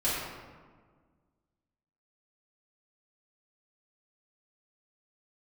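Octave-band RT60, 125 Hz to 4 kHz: 2.0, 2.1, 1.7, 1.5, 1.2, 0.85 s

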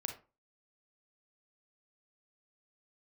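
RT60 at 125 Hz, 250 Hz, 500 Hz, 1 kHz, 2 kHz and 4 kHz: 0.35, 0.35, 0.35, 0.30, 0.25, 0.20 s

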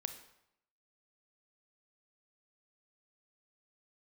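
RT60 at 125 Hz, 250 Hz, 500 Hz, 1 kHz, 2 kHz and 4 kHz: 0.80, 0.80, 0.75, 0.80, 0.70, 0.65 s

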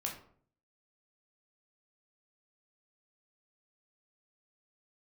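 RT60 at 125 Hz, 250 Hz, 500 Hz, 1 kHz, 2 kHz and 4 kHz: 0.75, 0.65, 0.60, 0.50, 0.40, 0.30 s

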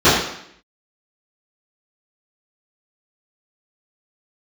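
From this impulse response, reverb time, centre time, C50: 0.70 s, 58 ms, 2.0 dB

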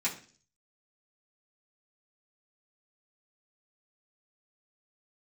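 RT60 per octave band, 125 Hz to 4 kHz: 0.65, 0.55, 0.50, 0.40, 0.45, 0.55 s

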